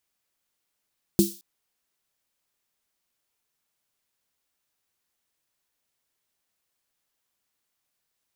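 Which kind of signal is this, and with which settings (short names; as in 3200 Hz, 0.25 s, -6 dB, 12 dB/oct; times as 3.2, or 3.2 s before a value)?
snare drum length 0.22 s, tones 200 Hz, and 340 Hz, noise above 3900 Hz, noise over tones -10.5 dB, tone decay 0.22 s, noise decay 0.43 s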